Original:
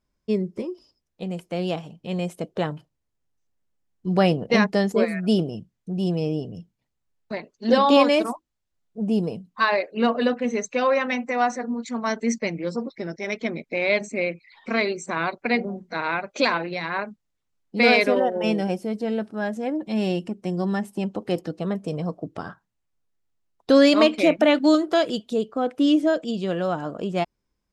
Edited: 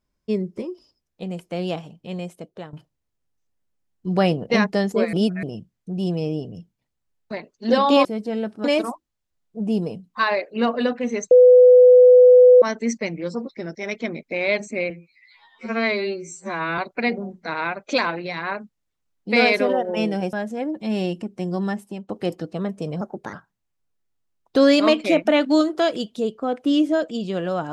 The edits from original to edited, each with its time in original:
1.81–2.73 fade out linear, to -15 dB
5.13–5.43 reverse
10.72–12.03 bleep 499 Hz -6.5 dBFS
14.31–15.25 stretch 2×
18.8–19.39 move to 8.05
20.78–21.15 fade out linear, to -14.5 dB
22.07–22.47 speed 124%

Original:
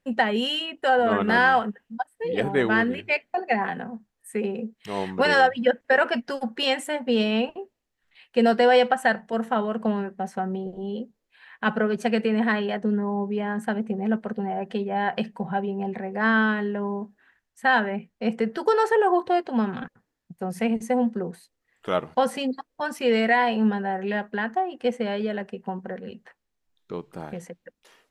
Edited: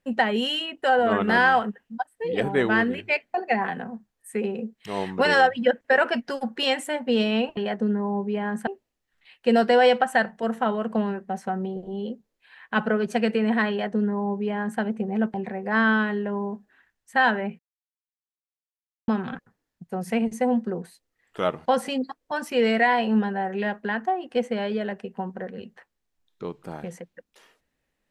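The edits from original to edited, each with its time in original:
12.6–13.7 copy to 7.57
14.24–15.83 cut
18.08–19.57 mute

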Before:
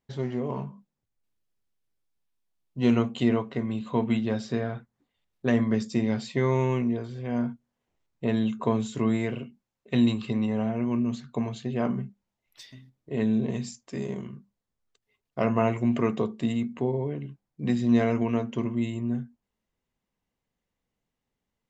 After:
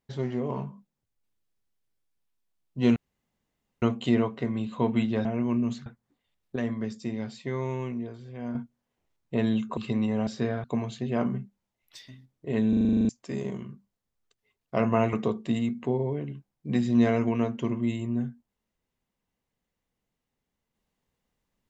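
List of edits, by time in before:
2.96 insert room tone 0.86 s
4.39–4.76 swap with 10.67–11.28
5.46–7.45 gain -7 dB
8.67–10.17 cut
13.33 stutter in place 0.04 s, 10 plays
15.77–16.07 cut

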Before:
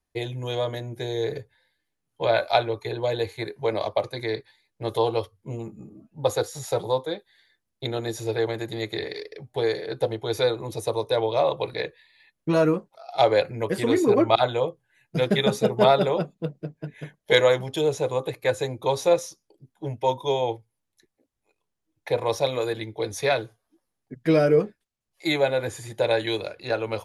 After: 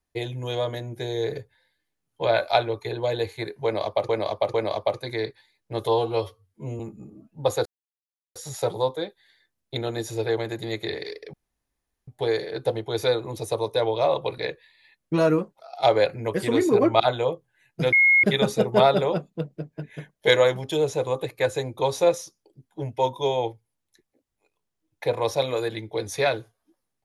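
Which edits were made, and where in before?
3.64–4.09 loop, 3 plays
4.98–5.59 stretch 1.5×
6.45 insert silence 0.70 s
9.43 insert room tone 0.74 s
15.28 add tone 2160 Hz -13.5 dBFS 0.31 s

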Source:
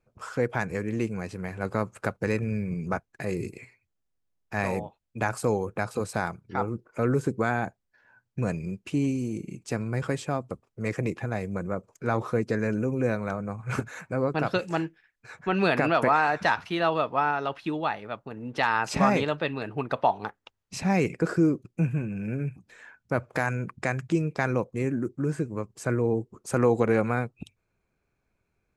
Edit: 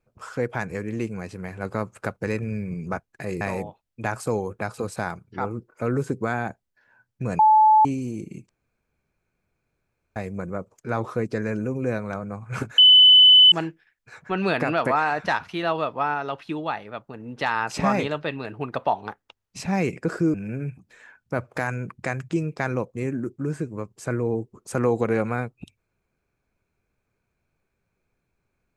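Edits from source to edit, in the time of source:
3.41–4.58 cut
8.56–9.02 bleep 865 Hz -11.5 dBFS
9.66–11.33 room tone
13.95–14.69 bleep 3010 Hz -8.5 dBFS
21.51–22.13 cut

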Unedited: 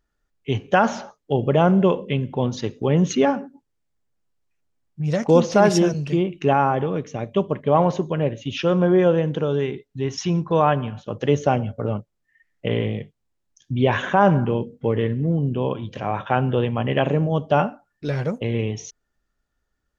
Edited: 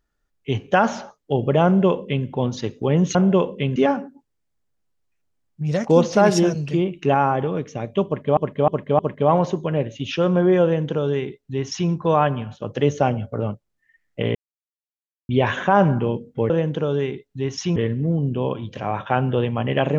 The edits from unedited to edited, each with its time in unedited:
1.65–2.26 copy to 3.15
7.45–7.76 loop, 4 plays
9.1–10.36 copy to 14.96
12.81–13.75 mute

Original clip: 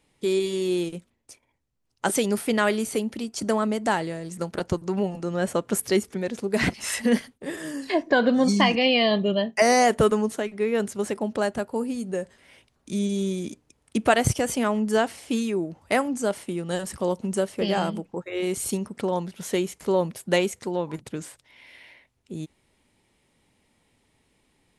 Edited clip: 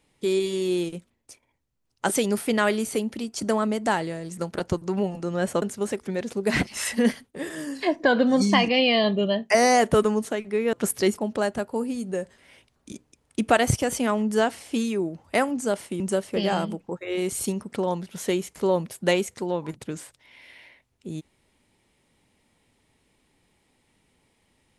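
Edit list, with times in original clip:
5.62–6.07 swap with 10.8–11.18
12.92–13.49 cut
16.57–17.25 cut

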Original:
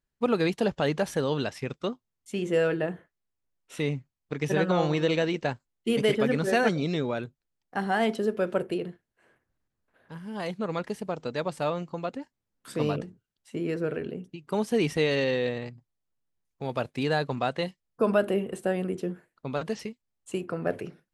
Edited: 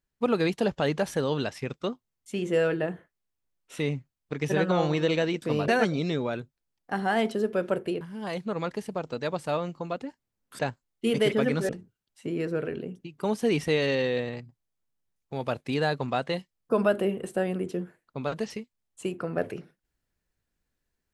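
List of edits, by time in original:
5.42–6.52 swap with 12.72–12.98
8.85–10.14 cut

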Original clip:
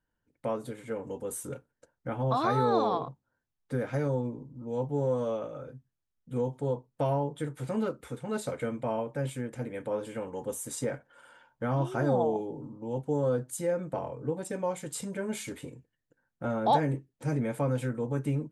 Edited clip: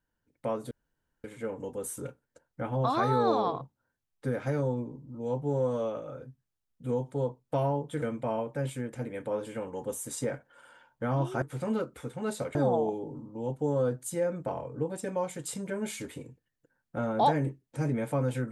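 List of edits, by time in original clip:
0.71 insert room tone 0.53 s
7.49–8.62 move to 12.02

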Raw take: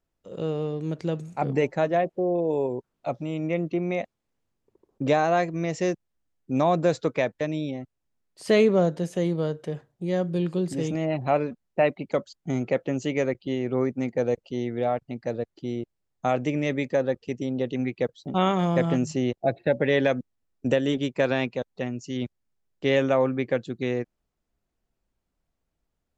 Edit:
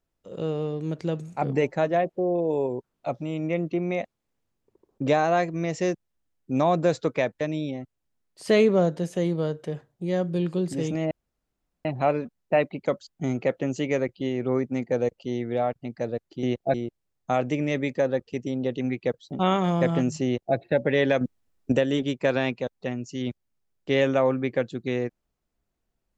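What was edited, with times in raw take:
11.11 insert room tone 0.74 s
19.2–19.51 copy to 15.69
20.16–20.67 gain +6 dB

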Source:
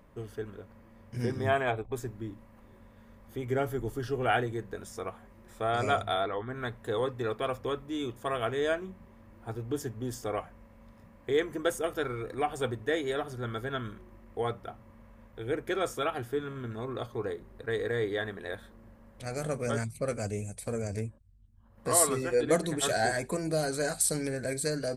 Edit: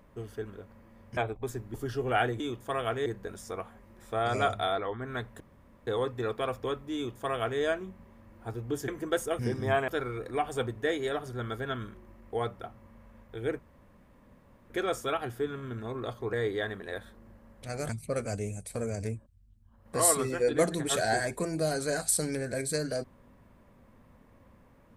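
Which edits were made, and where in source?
1.17–1.66 move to 11.92
2.23–3.88 cut
6.88 insert room tone 0.47 s
7.96–8.62 copy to 4.54
9.89–11.41 cut
15.63 insert room tone 1.11 s
17.26–17.9 cut
19.46–19.81 cut

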